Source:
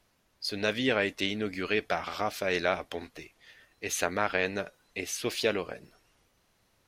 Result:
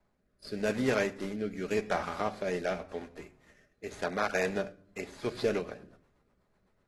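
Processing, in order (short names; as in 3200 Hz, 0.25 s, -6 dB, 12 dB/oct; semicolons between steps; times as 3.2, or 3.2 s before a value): median filter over 15 samples; reverb RT60 0.65 s, pre-delay 5 ms, DRR 8 dB; rotary speaker horn 0.85 Hz, later 8 Hz, at 4.64; AAC 32 kbps 32000 Hz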